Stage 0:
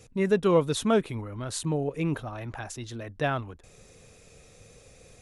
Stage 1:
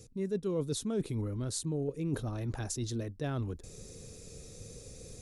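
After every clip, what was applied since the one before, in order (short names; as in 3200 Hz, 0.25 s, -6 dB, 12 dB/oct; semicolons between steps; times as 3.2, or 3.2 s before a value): band shelf 1400 Hz -11.5 dB 2.7 oct; reverse; compressor 5:1, threshold -38 dBFS, peak gain reduction 17.5 dB; reverse; gain +6 dB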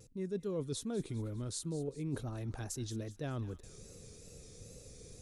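wow and flutter 78 cents; thin delay 0.201 s, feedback 51%, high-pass 1400 Hz, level -15 dB; gain -4.5 dB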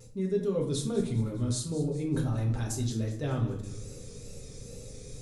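reverb RT60 0.65 s, pre-delay 4 ms, DRR -2 dB; gain +3 dB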